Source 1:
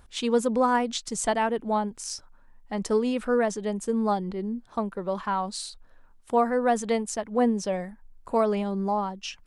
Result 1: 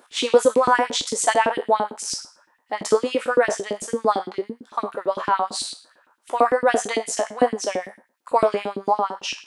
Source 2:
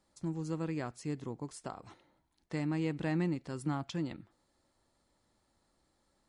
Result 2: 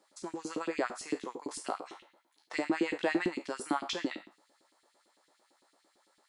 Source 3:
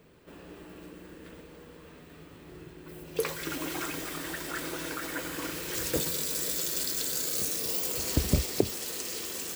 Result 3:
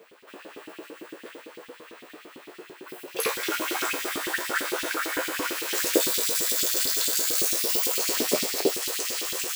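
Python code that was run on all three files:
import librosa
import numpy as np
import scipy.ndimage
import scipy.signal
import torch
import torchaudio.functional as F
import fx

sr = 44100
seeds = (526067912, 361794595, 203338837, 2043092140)

y = fx.spec_trails(x, sr, decay_s=0.38)
y = scipy.signal.sosfilt(scipy.signal.butter(4, 170.0, 'highpass', fs=sr, output='sos'), y)
y = fx.filter_lfo_highpass(y, sr, shape='saw_up', hz=8.9, low_hz=260.0, high_hz=3500.0, q=2.0)
y = y * librosa.db_to_amplitude(4.5)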